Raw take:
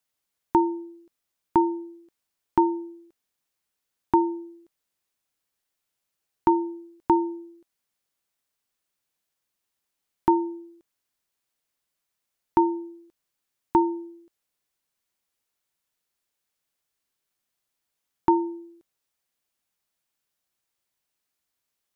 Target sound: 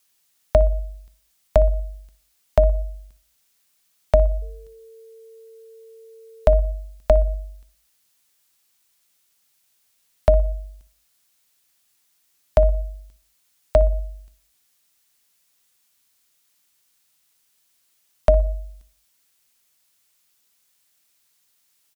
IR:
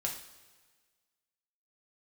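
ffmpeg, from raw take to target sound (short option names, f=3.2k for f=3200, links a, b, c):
-filter_complex "[0:a]highshelf=f=2k:g=12,bandreject=f=115.4:t=h:w=4,bandreject=f=230.8:t=h:w=4,bandreject=f=346.2:t=h:w=4,bandreject=f=461.6:t=h:w=4,bandreject=f=577:t=h:w=4,bandreject=f=692.4:t=h:w=4,bandreject=f=807.8:t=h:w=4,bandreject=f=923.2:t=h:w=4,afreqshift=-290,asplit=2[a][b];[b]adelay=60,lowpass=f=1.2k:p=1,volume=-15dB,asplit=2[c][d];[d]adelay=60,lowpass=f=1.2k:p=1,volume=0.46,asplit=2[e][f];[f]adelay=60,lowpass=f=1.2k:p=1,volume=0.46,asplit=2[g][h];[h]adelay=60,lowpass=f=1.2k:p=1,volume=0.46[i];[c][e][g][i]amix=inputs=4:normalize=0[j];[a][j]amix=inputs=2:normalize=0,asettb=1/sr,asplit=3[k][l][m];[k]atrim=end=4.424[n];[l]atrim=start=4.42:end=6.57,asetpts=PTS-STARTPTS,afade=t=in:d=0.004:c=qsin,afade=t=out:st=2.146:d=0.004:c=qsin,aeval=exprs='val(0)+0.00398*sin(2*PI*450*n/s)':c=same[o];[m]atrim=start=6.566[p];[n][o]acrossfade=d=0.004:c1=hsin:c2=qsin[q];[q][p]acrossfade=d=0.004:c1=qsin:c2=hsin,volume=5dB"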